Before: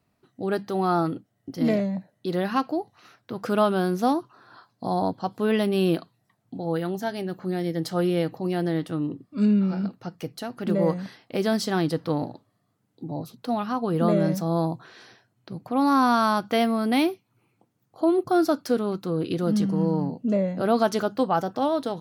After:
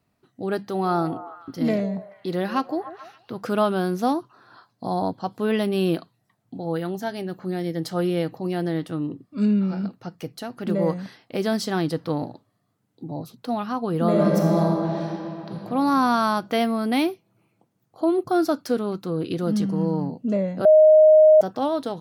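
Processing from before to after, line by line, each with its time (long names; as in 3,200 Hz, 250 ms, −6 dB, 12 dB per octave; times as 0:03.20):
0:00.69–0:03.35: echo through a band-pass that steps 144 ms, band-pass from 540 Hz, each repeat 0.7 octaves, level −10 dB
0:14.02–0:15.54: thrown reverb, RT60 3 s, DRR −1.5 dB
0:20.65–0:21.41: beep over 621 Hz −9 dBFS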